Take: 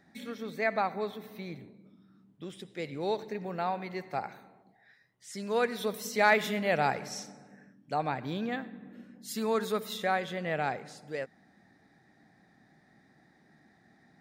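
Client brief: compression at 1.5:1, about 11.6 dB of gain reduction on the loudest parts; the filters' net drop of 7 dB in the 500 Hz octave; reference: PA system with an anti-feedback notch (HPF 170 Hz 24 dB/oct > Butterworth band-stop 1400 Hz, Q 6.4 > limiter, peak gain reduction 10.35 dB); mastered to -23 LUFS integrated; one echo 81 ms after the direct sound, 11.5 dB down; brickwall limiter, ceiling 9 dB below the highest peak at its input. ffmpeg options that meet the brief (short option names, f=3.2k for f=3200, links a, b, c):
-af "equalizer=f=500:t=o:g=-9,acompressor=threshold=-53dB:ratio=1.5,alimiter=level_in=8.5dB:limit=-24dB:level=0:latency=1,volume=-8.5dB,highpass=f=170:w=0.5412,highpass=f=170:w=1.3066,asuperstop=centerf=1400:order=8:qfactor=6.4,aecho=1:1:81:0.266,volume=28.5dB,alimiter=limit=-13.5dB:level=0:latency=1"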